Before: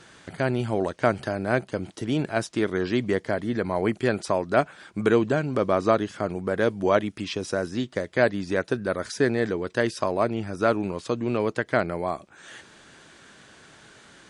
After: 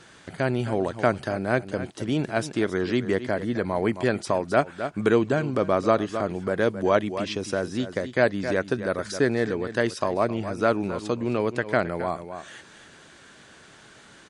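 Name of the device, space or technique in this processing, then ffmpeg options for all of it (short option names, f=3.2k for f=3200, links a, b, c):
ducked delay: -filter_complex "[0:a]asplit=3[a][b][c];[b]adelay=265,volume=-9dB[d];[c]apad=whole_len=642000[e];[d][e]sidechaincompress=threshold=-28dB:ratio=8:attack=6.7:release=114[f];[a][f]amix=inputs=2:normalize=0"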